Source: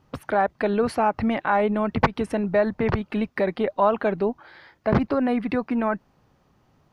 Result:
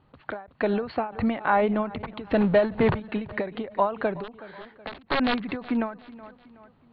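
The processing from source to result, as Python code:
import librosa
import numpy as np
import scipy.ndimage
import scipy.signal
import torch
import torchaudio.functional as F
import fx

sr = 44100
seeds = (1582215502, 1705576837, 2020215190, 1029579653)

y = fx.power_curve(x, sr, exponent=0.7, at=(2.31, 3.0))
y = fx.overflow_wrap(y, sr, gain_db=15.5, at=(4.23, 5.49), fade=0.02)
y = scipy.signal.sosfilt(scipy.signal.cheby1(6, 1.0, 4300.0, 'lowpass', fs=sr, output='sos'), y)
y = fx.echo_feedback(y, sr, ms=372, feedback_pct=44, wet_db=-20.0)
y = fx.end_taper(y, sr, db_per_s=140.0)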